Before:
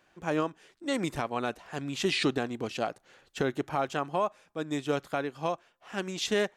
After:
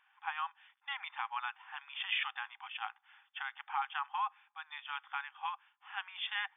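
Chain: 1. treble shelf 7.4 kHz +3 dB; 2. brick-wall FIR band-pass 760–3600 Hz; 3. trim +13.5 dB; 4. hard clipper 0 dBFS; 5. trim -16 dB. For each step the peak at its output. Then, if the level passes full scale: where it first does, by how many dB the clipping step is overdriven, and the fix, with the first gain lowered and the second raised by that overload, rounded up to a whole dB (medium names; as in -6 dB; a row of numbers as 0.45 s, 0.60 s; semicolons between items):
-16.5 dBFS, -19.0 dBFS, -5.5 dBFS, -5.5 dBFS, -21.5 dBFS; nothing clips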